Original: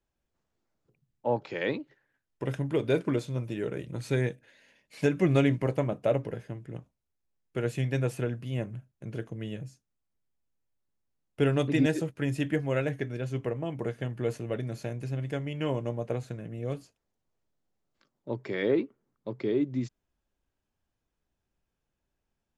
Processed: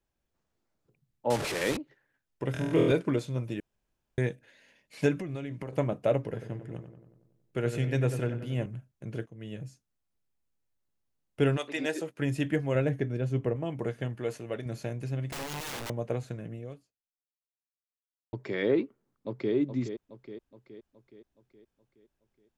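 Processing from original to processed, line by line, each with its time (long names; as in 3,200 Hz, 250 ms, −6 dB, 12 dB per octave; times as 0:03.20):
0:01.30–0:01.77: linear delta modulator 64 kbit/s, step −27 dBFS
0:02.52–0:02.92: flutter between parallel walls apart 4.2 metres, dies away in 1.1 s
0:03.60–0:04.18: fill with room tone
0:05.20–0:05.73: downward compressor 10 to 1, threshold −33 dBFS
0:06.23–0:08.66: feedback echo with a low-pass in the loop 93 ms, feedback 60%, low-pass 2,500 Hz, level −9 dB
0:09.26–0:09.66: fade in, from −15.5 dB
0:11.56–0:12.18: high-pass filter 830 Hz → 250 Hz
0:12.75–0:13.56: tilt shelving filter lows +4 dB, about 760 Hz
0:14.15–0:14.66: low-shelf EQ 270 Hz −8.5 dB
0:15.32–0:15.90: wrap-around overflow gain 33 dB
0:16.52–0:18.33: fade out exponential
0:18.83–0:19.54: delay throw 420 ms, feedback 55%, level −8.5 dB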